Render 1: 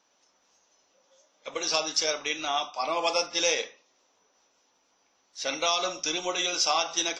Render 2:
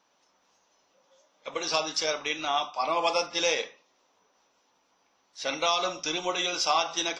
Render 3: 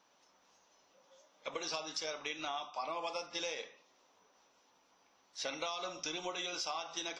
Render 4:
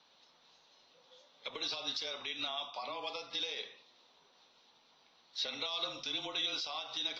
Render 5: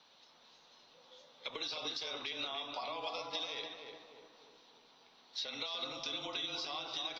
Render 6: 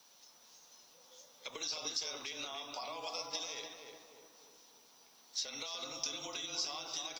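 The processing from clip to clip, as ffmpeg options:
-af "equalizer=f=160:t=o:w=0.67:g=4,equalizer=f=1000:t=o:w=0.67:g=3,equalizer=f=6300:t=o:w=0.67:g=-5"
-af "acompressor=threshold=0.0158:ratio=6,volume=0.891"
-af "alimiter=level_in=2.66:limit=0.0631:level=0:latency=1:release=116,volume=0.376,lowpass=f=4000:t=q:w=4.9,afreqshift=-27"
-filter_complex "[0:a]acompressor=threshold=0.0112:ratio=6,asplit=2[s0][s1];[s1]adelay=297,lowpass=f=1400:p=1,volume=0.708,asplit=2[s2][s3];[s3]adelay=297,lowpass=f=1400:p=1,volume=0.53,asplit=2[s4][s5];[s5]adelay=297,lowpass=f=1400:p=1,volume=0.53,asplit=2[s6][s7];[s7]adelay=297,lowpass=f=1400:p=1,volume=0.53,asplit=2[s8][s9];[s9]adelay=297,lowpass=f=1400:p=1,volume=0.53,asplit=2[s10][s11];[s11]adelay=297,lowpass=f=1400:p=1,volume=0.53,asplit=2[s12][s13];[s13]adelay=297,lowpass=f=1400:p=1,volume=0.53[s14];[s2][s4][s6][s8][s10][s12][s14]amix=inputs=7:normalize=0[s15];[s0][s15]amix=inputs=2:normalize=0,volume=1.26"
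-af "aexciter=amount=14.1:drive=3.2:freq=5800,volume=0.75"

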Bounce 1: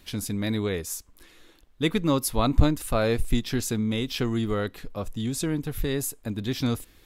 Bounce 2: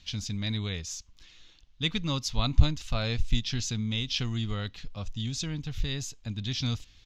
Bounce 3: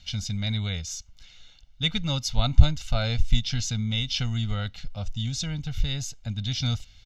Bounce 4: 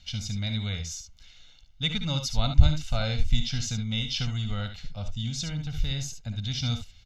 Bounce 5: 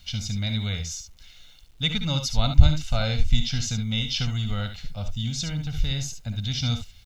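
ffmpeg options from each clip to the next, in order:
-af "firequalizer=gain_entry='entry(110,0);entry(360,-16);entry(730,-9);entry(1700,-7);entry(2900,3);entry(6500,2);entry(9100,-25)':delay=0.05:min_phase=1"
-af "aecho=1:1:1.4:0.7,volume=1.12"
-af "aecho=1:1:59|72:0.282|0.335,volume=0.75"
-af "acrusher=bits=10:mix=0:aa=0.000001,volume=1.41"

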